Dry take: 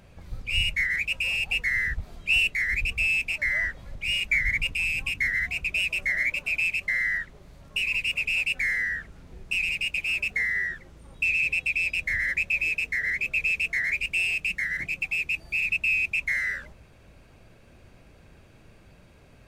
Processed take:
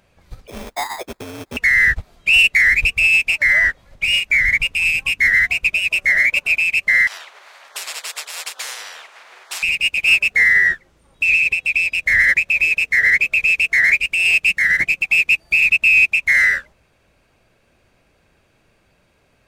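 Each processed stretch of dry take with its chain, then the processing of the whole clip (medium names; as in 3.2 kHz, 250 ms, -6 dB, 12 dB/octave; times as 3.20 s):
0.47–1.57 s: pre-emphasis filter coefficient 0.9 + sample-rate reducer 2.9 kHz
7.07–9.63 s: high-pass 1 kHz 24 dB/octave + tilt EQ -4.5 dB/octave + spectrum-flattening compressor 10:1
whole clip: bass shelf 310 Hz -9 dB; loudness maximiser +25.5 dB; upward expansion 2.5:1, over -20 dBFS; trim -4.5 dB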